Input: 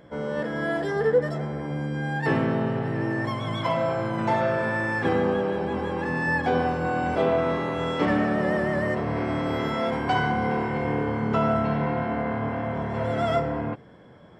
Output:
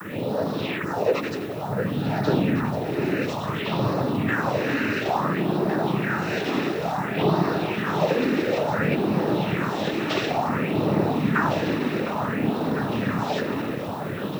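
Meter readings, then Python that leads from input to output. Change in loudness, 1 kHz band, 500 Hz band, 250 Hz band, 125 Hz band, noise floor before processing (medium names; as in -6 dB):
+1.0 dB, 0.0 dB, 0.0 dB, +3.0 dB, +1.5 dB, -47 dBFS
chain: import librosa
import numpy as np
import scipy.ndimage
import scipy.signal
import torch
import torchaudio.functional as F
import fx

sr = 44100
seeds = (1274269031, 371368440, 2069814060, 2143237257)

p1 = fx.lower_of_two(x, sr, delay_ms=5.1)
p2 = fx.noise_vocoder(p1, sr, seeds[0], bands=12)
p3 = scipy.signal.sosfilt(scipy.signal.butter(2, 5800.0, 'lowpass', fs=sr, output='sos'), p2)
p4 = fx.over_compress(p3, sr, threshold_db=-47.0, ratio=-1.0)
p5 = p3 + F.gain(torch.from_numpy(p4), 0.0).numpy()
p6 = fx.phaser_stages(p5, sr, stages=4, low_hz=130.0, high_hz=2300.0, hz=0.57, feedback_pct=35)
p7 = fx.dmg_noise_colour(p6, sr, seeds[1], colour='violet', level_db=-58.0)
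p8 = p7 + fx.echo_alternate(p7, sr, ms=704, hz=1200.0, feedback_pct=73, wet_db=-7.0, dry=0)
y = F.gain(torch.from_numpy(p8), 5.0).numpy()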